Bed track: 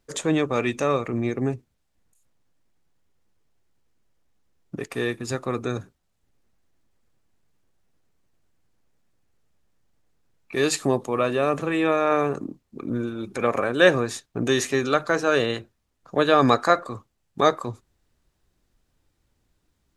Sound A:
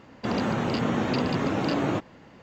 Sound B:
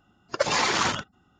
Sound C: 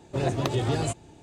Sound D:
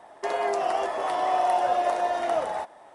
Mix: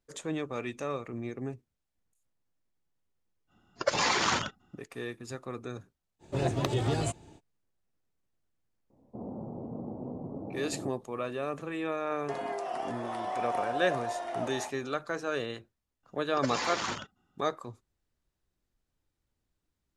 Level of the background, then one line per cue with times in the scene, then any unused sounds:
bed track −12 dB
0:03.47: mix in B −3.5 dB, fades 0.05 s
0:06.19: mix in C −3 dB, fades 0.05 s
0:08.90: mix in A −13 dB + inverse Chebyshev low-pass filter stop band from 1,600 Hz
0:12.05: mix in D −9.5 dB
0:16.03: mix in B −10 dB

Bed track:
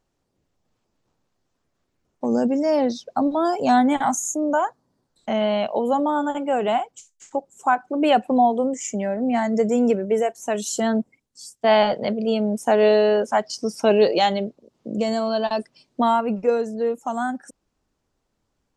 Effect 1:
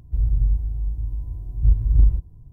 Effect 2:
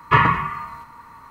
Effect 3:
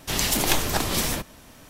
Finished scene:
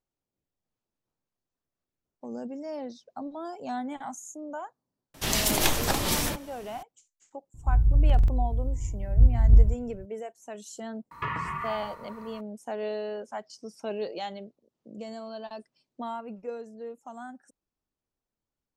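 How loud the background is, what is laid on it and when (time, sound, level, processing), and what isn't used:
bed track −16.5 dB
0:05.14: mix in 3 −2 dB
0:07.54: mix in 1 −1 dB + buffer that repeats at 0:00.51, samples 2,048, times 4
0:11.11: mix in 2 −3.5 dB + downward compressor, threshold −25 dBFS

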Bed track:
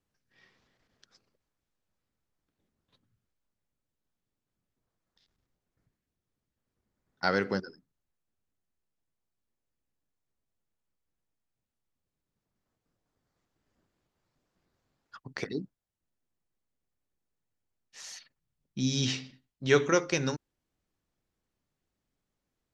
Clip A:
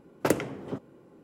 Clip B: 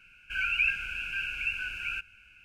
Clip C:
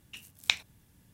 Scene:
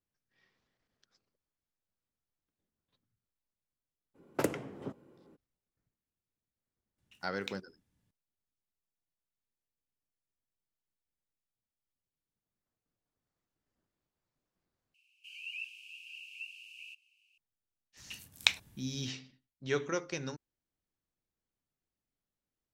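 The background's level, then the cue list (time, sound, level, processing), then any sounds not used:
bed track −9.5 dB
0:04.14: mix in A −6.5 dB, fades 0.02 s
0:06.98: mix in C −16.5 dB + running median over 3 samples
0:14.94: overwrite with B −7.5 dB + elliptic high-pass filter 2,900 Hz, stop band 50 dB
0:17.97: mix in C

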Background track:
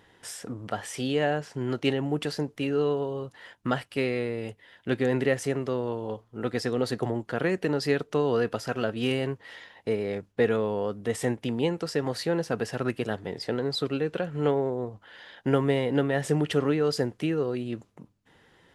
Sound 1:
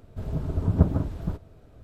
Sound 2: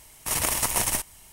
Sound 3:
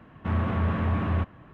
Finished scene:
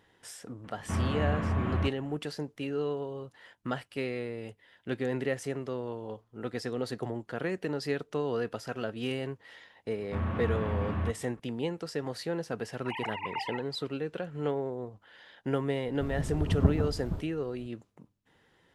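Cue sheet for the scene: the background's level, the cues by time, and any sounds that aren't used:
background track −6.5 dB
0:00.64: mix in 3 −4 dB
0:09.87: mix in 3 −6 dB + one half of a high-frequency compander decoder only
0:12.60: mix in 2 −12 dB + three sine waves on the formant tracks
0:15.84: mix in 1 −4.5 dB

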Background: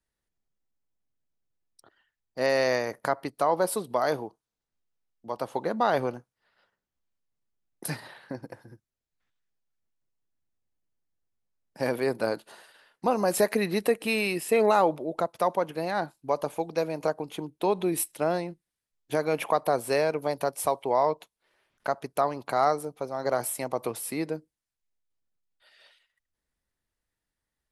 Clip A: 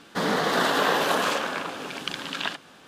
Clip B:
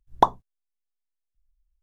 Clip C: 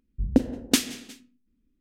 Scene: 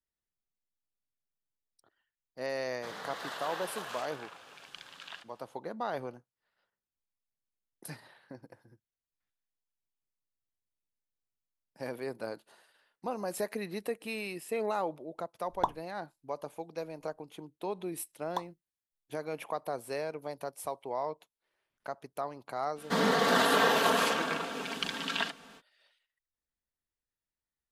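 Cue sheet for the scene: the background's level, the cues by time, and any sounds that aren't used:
background −11 dB
0:02.67: mix in A −16 dB + parametric band 260 Hz −14 dB 1.5 octaves
0:15.41: mix in B −11.5 dB
0:18.14: mix in B −17.5 dB + spectral tilt +3.5 dB per octave
0:22.75: mix in A −4 dB, fades 0.05 s + comb filter 4.4 ms, depth 56%
not used: C

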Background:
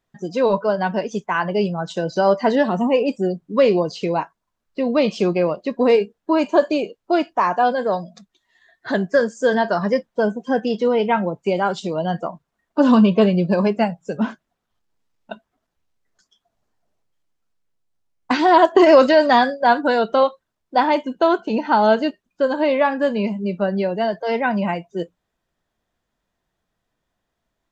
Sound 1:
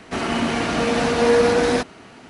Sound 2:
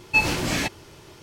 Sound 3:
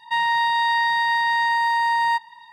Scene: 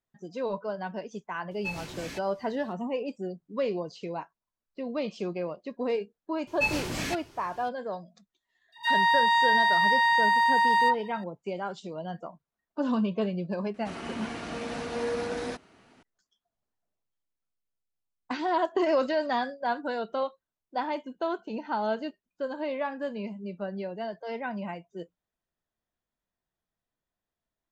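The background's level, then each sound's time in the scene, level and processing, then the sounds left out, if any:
background −14 dB
0:01.51: mix in 2 −16 dB
0:06.47: mix in 2 −7.5 dB
0:08.72: mix in 3 −2 dB + all-pass dispersion lows, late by 67 ms, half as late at 1,200 Hz
0:13.74: mix in 1 −15 dB

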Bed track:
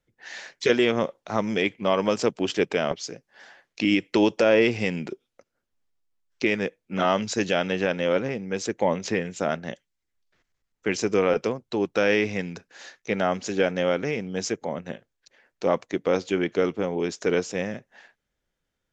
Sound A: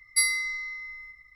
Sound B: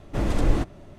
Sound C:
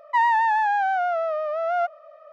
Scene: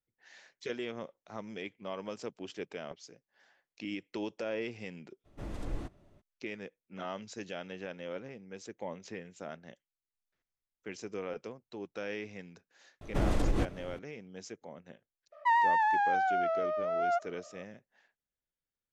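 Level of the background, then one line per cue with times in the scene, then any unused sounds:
bed track −17.5 dB
0:05.24: mix in B −16.5 dB, fades 0.02 s
0:13.01: mix in B −1 dB + downward compressor, threshold −22 dBFS
0:15.32: mix in C −6.5 dB
not used: A

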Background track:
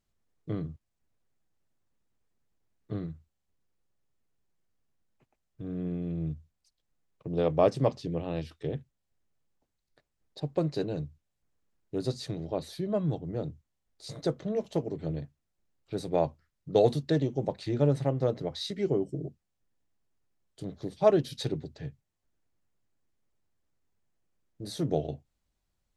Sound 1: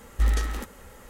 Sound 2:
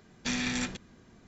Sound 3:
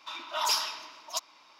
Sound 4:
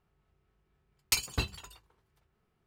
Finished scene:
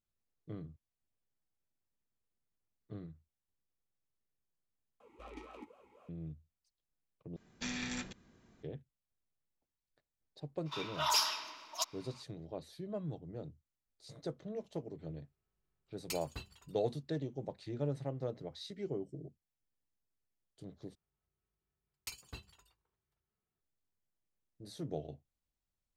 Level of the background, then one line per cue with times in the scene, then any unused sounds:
background track −11.5 dB
0:05.00: overwrite with 1 −1.5 dB + formant filter swept between two vowels a-u 3.9 Hz
0:07.36: overwrite with 2 −8.5 dB
0:10.65: mix in 3 −3 dB, fades 0.02 s
0:14.98: mix in 4 −14.5 dB
0:20.95: overwrite with 4 −17 dB

